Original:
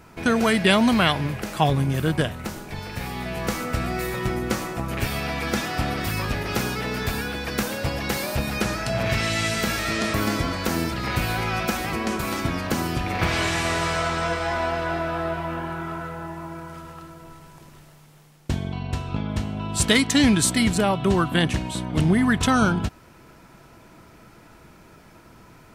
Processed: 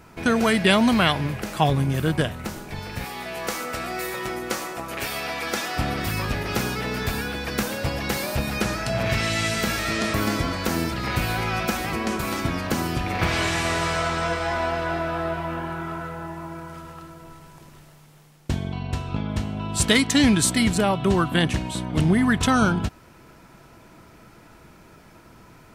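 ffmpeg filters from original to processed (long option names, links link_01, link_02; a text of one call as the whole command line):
ffmpeg -i in.wav -filter_complex "[0:a]asettb=1/sr,asplit=3[link_01][link_02][link_03];[link_01]atrim=end=3.044[link_04];[link_02]atrim=start=3.04:end=5.77,asetpts=PTS-STARTPTS,afade=type=in:duration=0.004:curve=qsin,afade=type=out:start_time=2.726:duration=0.004:curve=qsin,bass=frequency=250:gain=-14,treble=frequency=4000:gain=2[link_05];[link_03]atrim=start=5.766[link_06];[link_04][link_05]acrossfade=duration=0.004:curve1=hsin:curve2=qsin[link_07];[link_07][link_06]acrossfade=duration=0.004:curve1=qsin:curve2=hsin" out.wav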